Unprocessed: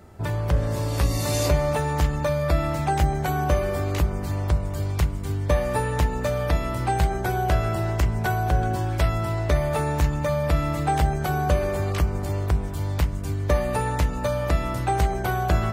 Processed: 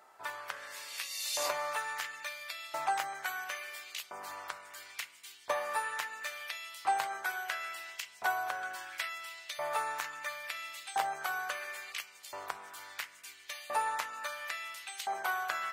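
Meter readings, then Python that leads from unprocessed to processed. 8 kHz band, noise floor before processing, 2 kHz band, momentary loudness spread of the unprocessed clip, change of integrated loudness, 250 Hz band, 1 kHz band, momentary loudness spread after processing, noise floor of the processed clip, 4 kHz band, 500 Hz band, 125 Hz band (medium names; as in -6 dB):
-5.5 dB, -29 dBFS, -3.5 dB, 3 LU, -12.5 dB, under -30 dB, -8.5 dB, 10 LU, -56 dBFS, -4.0 dB, -18.0 dB, under -40 dB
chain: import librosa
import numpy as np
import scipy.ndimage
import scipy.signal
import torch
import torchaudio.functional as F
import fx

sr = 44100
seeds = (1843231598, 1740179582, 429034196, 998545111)

y = fx.filter_lfo_highpass(x, sr, shape='saw_up', hz=0.73, low_hz=860.0, high_hz=3400.0, q=1.6)
y = y * librosa.db_to_amplitude(-6.0)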